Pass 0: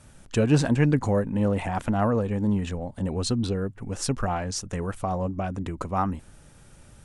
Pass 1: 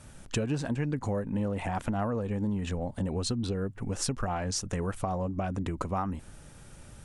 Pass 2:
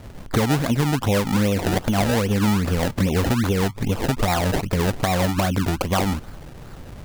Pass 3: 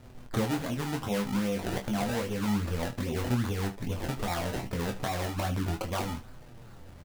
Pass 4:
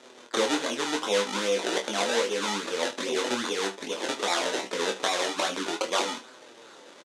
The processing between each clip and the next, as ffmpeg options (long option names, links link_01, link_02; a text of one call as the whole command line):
ffmpeg -i in.wav -af "acompressor=threshold=-29dB:ratio=6,volume=1.5dB" out.wav
ffmpeg -i in.wav -filter_complex "[0:a]asplit=2[link_01][link_02];[link_02]alimiter=limit=-22dB:level=0:latency=1:release=124,volume=0dB[link_03];[link_01][link_03]amix=inputs=2:normalize=0,acrusher=samples=28:mix=1:aa=0.000001:lfo=1:lforange=28:lforate=2.5,volume=5dB" out.wav
ffmpeg -i in.wav -af "flanger=delay=7.9:depth=7.8:regen=34:speed=0.32:shape=sinusoidal,aecho=1:1:24|76:0.473|0.168,volume=-7.5dB" out.wav
ffmpeg -i in.wav -filter_complex "[0:a]highpass=frequency=330:width=0.5412,highpass=frequency=330:width=1.3066,equalizer=frequency=720:width_type=q:width=4:gain=-5,equalizer=frequency=3600:width_type=q:width=4:gain=7,equalizer=frequency=6300:width_type=q:width=4:gain=5,lowpass=frequency=9400:width=0.5412,lowpass=frequency=9400:width=1.3066,asplit=2[link_01][link_02];[link_02]adelay=26,volume=-13dB[link_03];[link_01][link_03]amix=inputs=2:normalize=0,volume=7.5dB" out.wav